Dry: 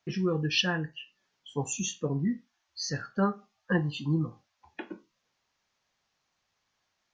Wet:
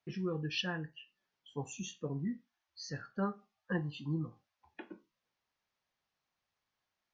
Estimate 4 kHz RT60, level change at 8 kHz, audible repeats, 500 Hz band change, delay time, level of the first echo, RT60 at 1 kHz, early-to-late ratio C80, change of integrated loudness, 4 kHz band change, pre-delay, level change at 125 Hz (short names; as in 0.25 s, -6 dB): none, -13.5 dB, none, -8.0 dB, none, none, none, none, -8.5 dB, -10.0 dB, none, -8.0 dB